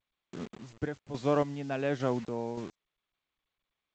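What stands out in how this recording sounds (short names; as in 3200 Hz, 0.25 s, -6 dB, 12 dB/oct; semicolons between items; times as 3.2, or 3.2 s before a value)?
a quantiser's noise floor 8-bit, dither none; random-step tremolo, depth 75%; G.722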